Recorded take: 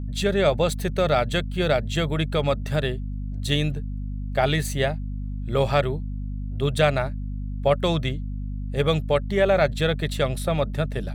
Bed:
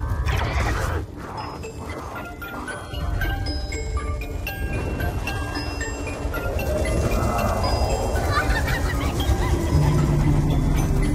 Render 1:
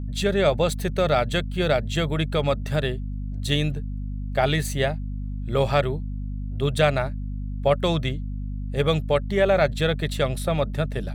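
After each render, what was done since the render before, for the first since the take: nothing audible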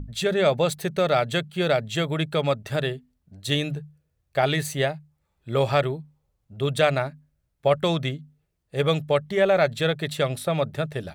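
notches 50/100/150/200/250 Hz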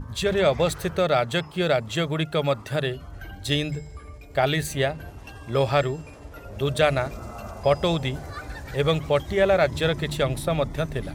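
add bed -15 dB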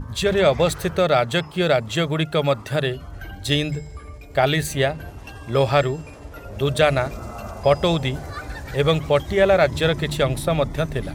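gain +3.5 dB; limiter -2 dBFS, peak gain reduction 1 dB

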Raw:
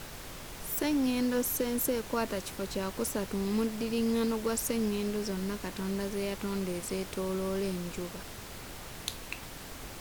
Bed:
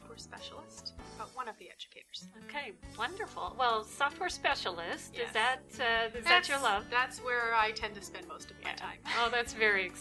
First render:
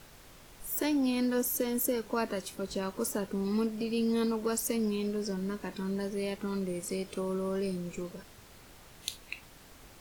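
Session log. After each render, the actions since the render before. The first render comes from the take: noise print and reduce 10 dB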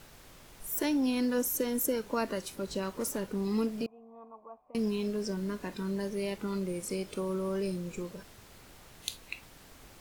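2.84–3.36 hard clip -27.5 dBFS; 3.86–4.75 vocal tract filter a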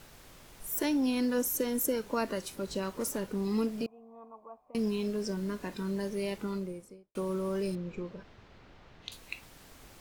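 6.35–7.15 studio fade out; 7.75–9.12 air absorption 220 m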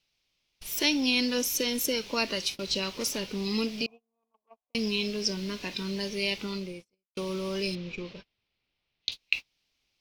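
gate -44 dBFS, range -31 dB; band shelf 3600 Hz +15.5 dB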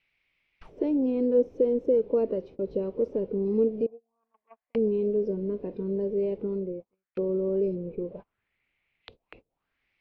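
soft clip -15.5 dBFS, distortion -21 dB; envelope low-pass 470–2200 Hz down, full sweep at -35 dBFS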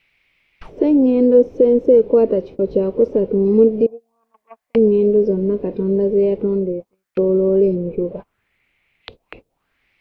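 gain +12 dB; limiter -3 dBFS, peak gain reduction 2.5 dB

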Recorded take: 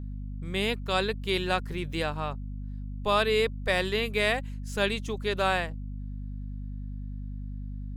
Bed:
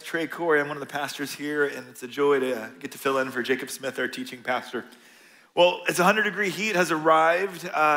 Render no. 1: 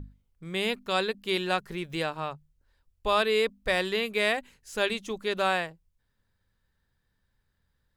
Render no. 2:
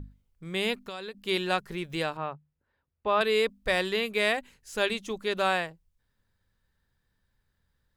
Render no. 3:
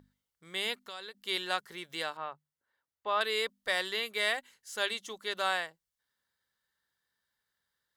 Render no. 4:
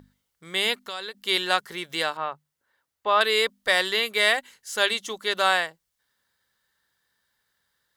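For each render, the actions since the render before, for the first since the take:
notches 50/100/150/200/250 Hz
0.78–1.21 compressor 10:1, threshold -34 dBFS; 2.17–3.21 BPF 110–2200 Hz
HPF 1300 Hz 6 dB/oct; notch 2500 Hz, Q 6.3
gain +9.5 dB

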